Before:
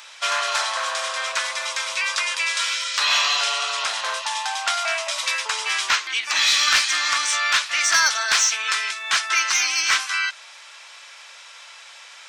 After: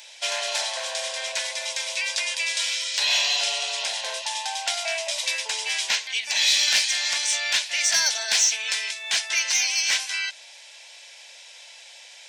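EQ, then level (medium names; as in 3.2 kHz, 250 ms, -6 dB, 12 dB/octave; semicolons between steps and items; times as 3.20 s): bass shelf 72 Hz -12 dB; static phaser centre 330 Hz, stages 6; 0.0 dB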